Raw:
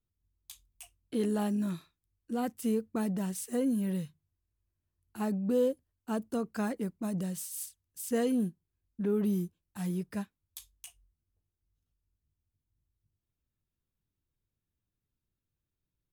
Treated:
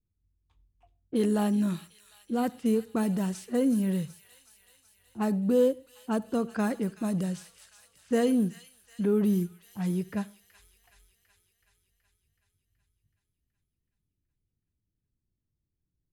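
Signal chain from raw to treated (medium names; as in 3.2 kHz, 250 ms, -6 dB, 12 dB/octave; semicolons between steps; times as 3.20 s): level-controlled noise filter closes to 370 Hz, open at -29.5 dBFS; feedback echo behind a high-pass 375 ms, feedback 64%, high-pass 2.4 kHz, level -10 dB; on a send at -21.5 dB: reverberation RT60 0.30 s, pre-delay 59 ms; on the sum: trim +4.5 dB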